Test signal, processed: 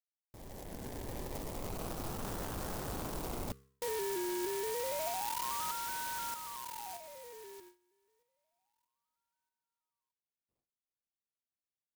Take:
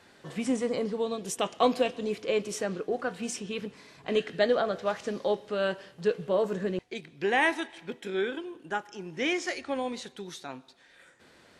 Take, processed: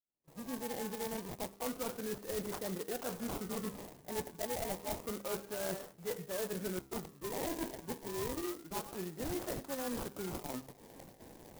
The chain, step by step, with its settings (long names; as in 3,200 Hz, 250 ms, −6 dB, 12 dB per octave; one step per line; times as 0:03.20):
fade in at the beginning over 2.54 s
noise gate with hold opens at −52 dBFS
reversed playback
downward compressor 10 to 1, threshold −38 dBFS
reversed playback
hum removal 66.94 Hz, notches 7
sample-and-hold swept by an LFO 26×, swing 60% 0.29 Hz
soft clipping −31.5 dBFS
converter with an unsteady clock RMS 0.1 ms
level +3.5 dB